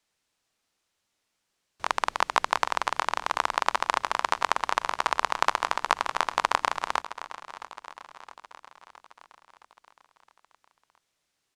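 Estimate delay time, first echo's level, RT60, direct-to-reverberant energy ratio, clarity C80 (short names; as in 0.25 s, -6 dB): 0.666 s, -15.0 dB, none, none, none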